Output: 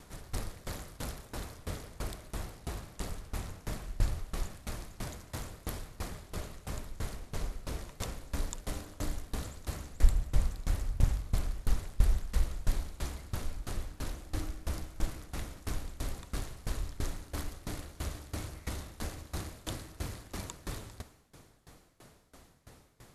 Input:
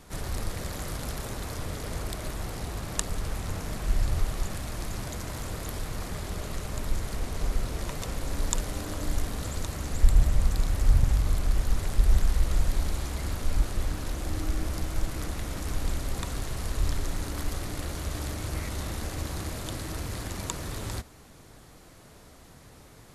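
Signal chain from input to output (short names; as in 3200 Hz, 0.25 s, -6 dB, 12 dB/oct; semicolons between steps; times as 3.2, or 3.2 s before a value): dB-ramp tremolo decaying 3 Hz, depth 22 dB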